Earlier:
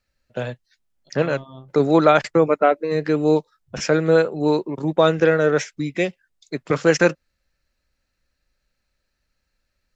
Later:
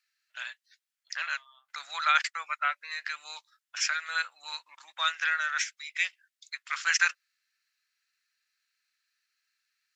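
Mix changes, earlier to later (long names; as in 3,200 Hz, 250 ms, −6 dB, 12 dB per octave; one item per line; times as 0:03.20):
second voice: add high-frequency loss of the air 220 metres
master: add inverse Chebyshev high-pass filter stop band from 420 Hz, stop band 60 dB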